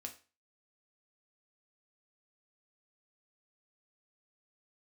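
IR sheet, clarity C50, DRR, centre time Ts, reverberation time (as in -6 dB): 12.5 dB, 3.0 dB, 11 ms, 0.35 s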